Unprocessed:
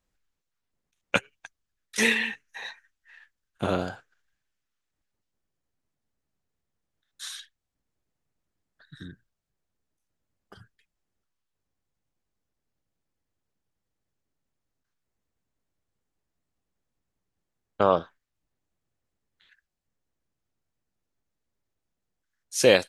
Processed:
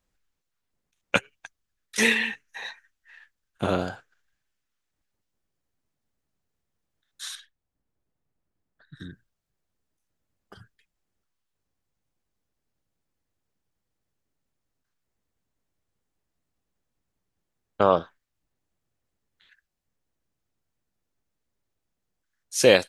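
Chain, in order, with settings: 7.35–9.00 s: treble shelf 2.1 kHz -10 dB; trim +1.5 dB

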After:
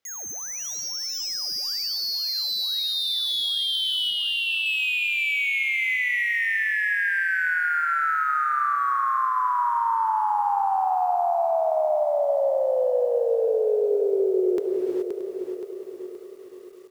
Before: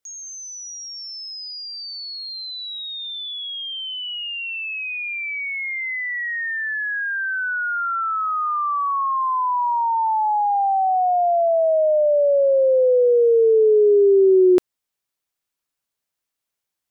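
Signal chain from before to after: median filter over 5 samples; 4.10–4.66 s: tone controls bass +4 dB, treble -12 dB; gated-style reverb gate 450 ms flat, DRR 9.5 dB; compression 5:1, threshold -29 dBFS, peak gain reduction 17.5 dB; bass shelf 66 Hz -9.5 dB; on a send: feedback delay 625 ms, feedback 47%, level -15 dB; on the sum: bit-crushed delay 523 ms, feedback 55%, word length 10-bit, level -7 dB; trim +5.5 dB

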